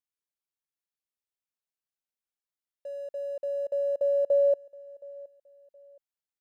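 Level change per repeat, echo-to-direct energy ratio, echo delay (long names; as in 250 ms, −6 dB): −10.0 dB, −21.5 dB, 720 ms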